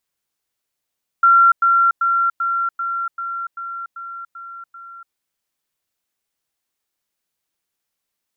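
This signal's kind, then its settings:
level staircase 1,370 Hz −8 dBFS, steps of −3 dB, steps 10, 0.29 s 0.10 s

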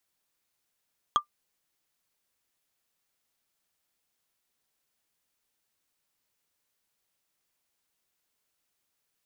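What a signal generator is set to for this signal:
struck wood, lowest mode 1,190 Hz, decay 0.10 s, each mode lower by 7.5 dB, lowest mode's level −14 dB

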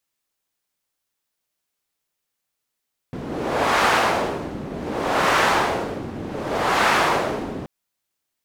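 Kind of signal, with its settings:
wind from filtered noise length 4.53 s, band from 260 Hz, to 1,200 Hz, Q 1, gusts 3, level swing 13.5 dB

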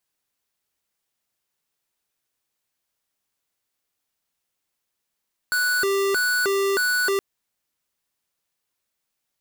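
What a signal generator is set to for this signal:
siren hi-lo 394–1,480 Hz 1.6 per second square −21.5 dBFS 1.67 s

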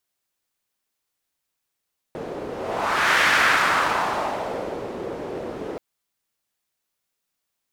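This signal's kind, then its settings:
pass-by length 3.63 s, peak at 0:01.06, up 0.77 s, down 1.88 s, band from 440 Hz, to 1,700 Hz, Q 1.9, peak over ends 14 dB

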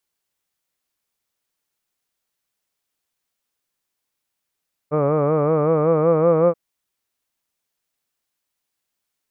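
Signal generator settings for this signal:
vowel from formants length 1.63 s, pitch 145 Hz, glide +2.5 semitones, F1 520 Hz, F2 1,200 Hz, F3 2,300 Hz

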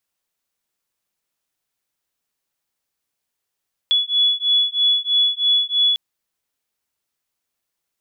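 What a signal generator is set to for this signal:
two tones that beat 3,400 Hz, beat 3.1 Hz, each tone −18 dBFS 2.05 s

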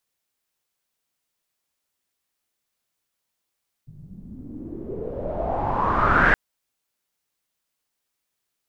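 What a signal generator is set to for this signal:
filter sweep on noise pink, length 2.47 s lowpass, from 140 Hz, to 1,700 Hz, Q 6.2, exponential, gain ramp +27 dB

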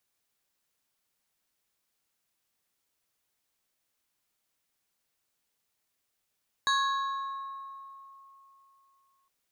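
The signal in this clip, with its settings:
two-operator FM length 2.61 s, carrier 1,090 Hz, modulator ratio 2.53, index 1.3, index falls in 2.42 s exponential, decay 3.23 s, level −22 dB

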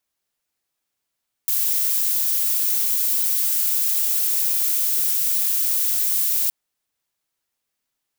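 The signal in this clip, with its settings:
noise violet, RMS −20.5 dBFS 5.02 s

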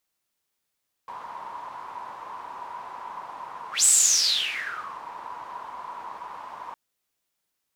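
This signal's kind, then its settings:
pass-by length 5.66 s, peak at 0:02.77, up 0.15 s, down 1.22 s, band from 980 Hz, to 7,900 Hz, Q 9.7, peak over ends 21 dB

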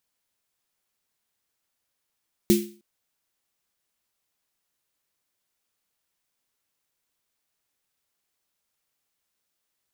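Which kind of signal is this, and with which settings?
synth snare length 0.31 s, tones 210 Hz, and 350 Hz, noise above 2,100 Hz, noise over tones −9.5 dB, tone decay 0.38 s, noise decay 0.37 s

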